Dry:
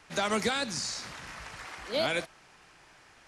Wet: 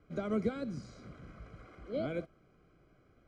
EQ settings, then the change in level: boxcar filter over 49 samples; +1.5 dB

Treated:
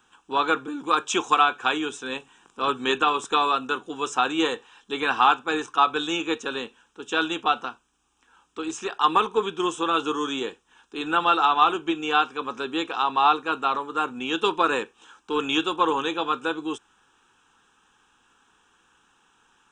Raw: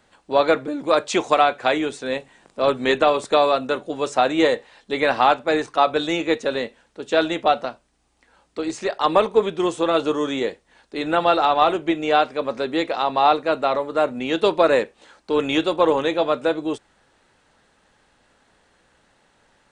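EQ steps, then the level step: tone controls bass -12 dB, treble -1 dB; static phaser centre 3 kHz, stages 8; +2.5 dB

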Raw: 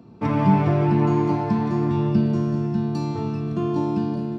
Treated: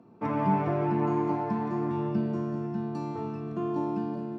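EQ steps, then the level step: high-pass 410 Hz 6 dB/octave; distance through air 56 m; peaking EQ 4.1 kHz -11 dB 1.6 oct; -2.0 dB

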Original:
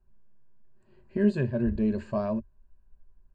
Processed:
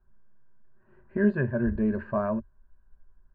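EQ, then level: resonant low-pass 1.5 kHz, resonance Q 3; 0.0 dB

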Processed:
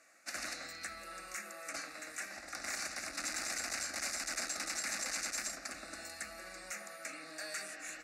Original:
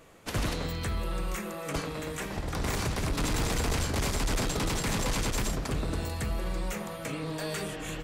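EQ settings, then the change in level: low-pass 4.5 kHz 12 dB/octave; differentiator; static phaser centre 650 Hz, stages 8; +10.5 dB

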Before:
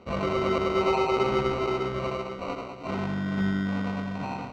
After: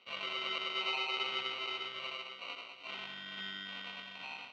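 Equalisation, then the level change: band-pass filter 3.1 kHz, Q 3.7; +6.0 dB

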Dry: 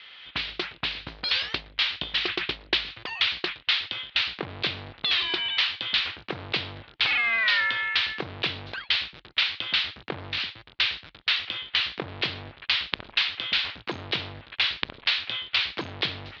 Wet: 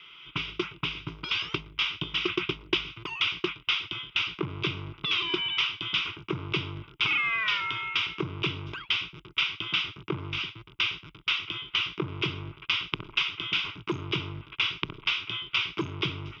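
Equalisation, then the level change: static phaser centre 350 Hz, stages 8; static phaser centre 1.8 kHz, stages 4; +8.5 dB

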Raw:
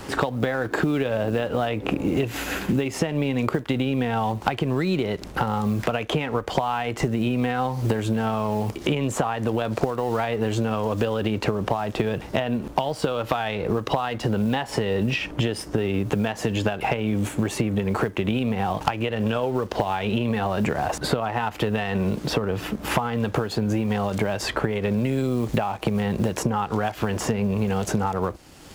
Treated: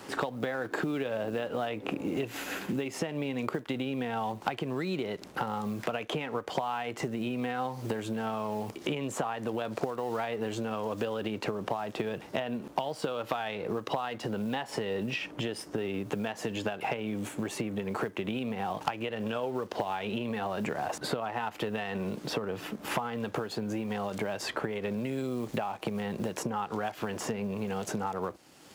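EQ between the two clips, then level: Bessel high-pass 190 Hz, order 2; -7.5 dB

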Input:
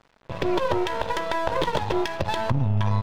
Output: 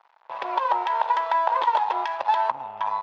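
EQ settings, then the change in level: resonant high-pass 880 Hz, resonance Q 3.9; distance through air 150 m; -2.5 dB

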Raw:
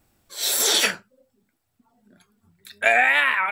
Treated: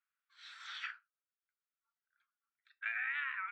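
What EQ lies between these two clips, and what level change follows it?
elliptic high-pass 1.3 kHz, stop band 70 dB; tape spacing loss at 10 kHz 43 dB; treble shelf 4.1 kHz -7.5 dB; -8.5 dB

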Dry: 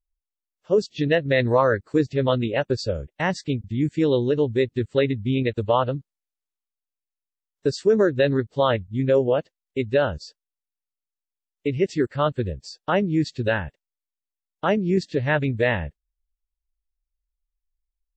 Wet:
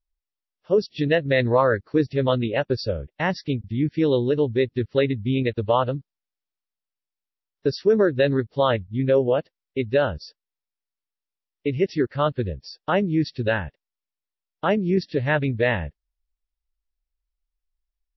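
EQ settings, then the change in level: brick-wall FIR low-pass 5.8 kHz; 0.0 dB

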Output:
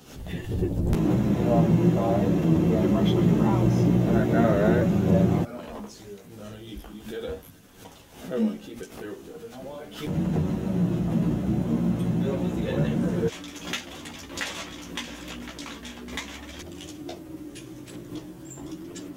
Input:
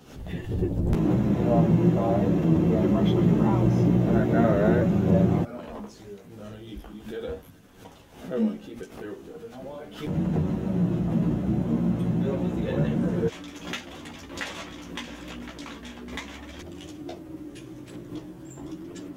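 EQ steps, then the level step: treble shelf 3.4 kHz +7.5 dB; 0.0 dB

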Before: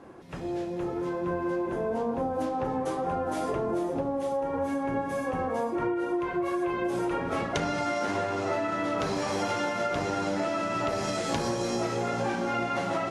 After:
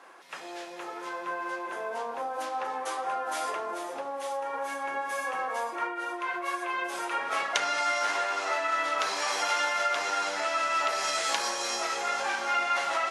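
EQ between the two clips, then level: high-pass 1.1 kHz 12 dB/octave; +6.5 dB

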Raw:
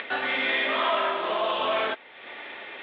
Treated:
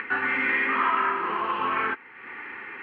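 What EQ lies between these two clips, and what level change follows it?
low-pass 3.3 kHz 6 dB/octave; static phaser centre 1.5 kHz, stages 4; +5.5 dB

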